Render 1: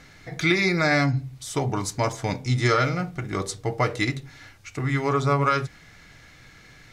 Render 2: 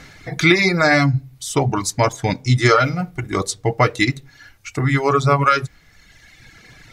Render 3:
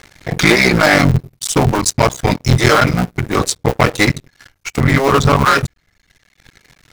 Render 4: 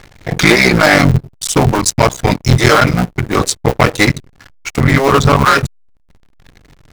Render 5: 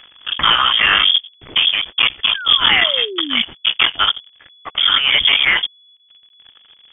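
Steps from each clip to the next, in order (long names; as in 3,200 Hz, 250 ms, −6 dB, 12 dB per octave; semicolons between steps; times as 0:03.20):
reverb reduction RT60 1.5 s; level +8 dB
sub-harmonics by changed cycles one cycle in 3, muted; leveller curve on the samples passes 3; level −2 dB
slack as between gear wheels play −37.5 dBFS; level +2 dB
voice inversion scrambler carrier 3,400 Hz; sound drawn into the spectrogram fall, 0:02.34–0:03.42, 220–1,700 Hz −23 dBFS; level −4.5 dB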